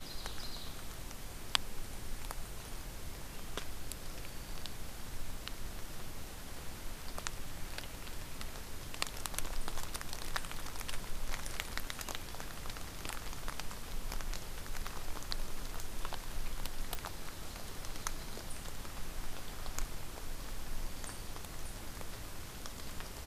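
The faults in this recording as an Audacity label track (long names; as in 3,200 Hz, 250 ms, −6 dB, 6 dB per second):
16.950000	16.950000	click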